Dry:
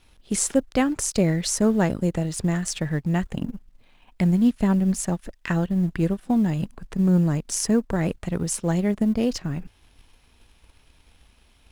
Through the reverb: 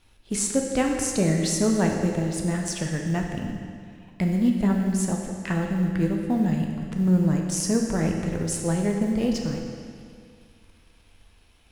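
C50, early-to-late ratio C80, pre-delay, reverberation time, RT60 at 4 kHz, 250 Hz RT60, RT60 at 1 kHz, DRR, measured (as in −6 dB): 3.0 dB, 4.5 dB, 10 ms, 2.2 s, 2.0 s, 2.2 s, 2.2 s, 1.0 dB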